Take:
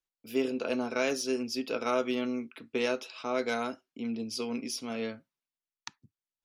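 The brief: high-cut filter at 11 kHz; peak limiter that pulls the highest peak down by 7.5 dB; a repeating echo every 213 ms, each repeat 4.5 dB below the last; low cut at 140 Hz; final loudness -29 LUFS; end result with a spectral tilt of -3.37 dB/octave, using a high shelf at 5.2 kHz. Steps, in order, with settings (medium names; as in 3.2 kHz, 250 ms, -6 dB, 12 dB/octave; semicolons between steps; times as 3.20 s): high-pass 140 Hz; low-pass 11 kHz; treble shelf 5.2 kHz -3.5 dB; peak limiter -24 dBFS; feedback delay 213 ms, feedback 60%, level -4.5 dB; trim +4.5 dB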